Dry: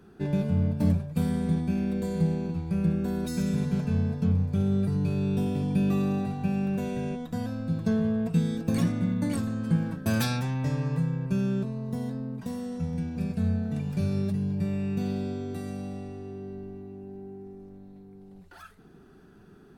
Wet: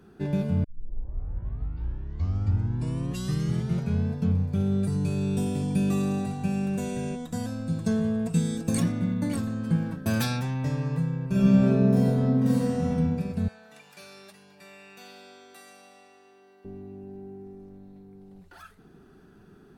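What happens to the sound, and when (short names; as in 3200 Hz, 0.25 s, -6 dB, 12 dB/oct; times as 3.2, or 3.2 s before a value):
0.64 tape start 3.43 s
4.83–8.8 bell 8100 Hz +13 dB 0.98 oct
11.27–12.88 reverb throw, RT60 1.9 s, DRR -8.5 dB
13.48–16.65 HPF 990 Hz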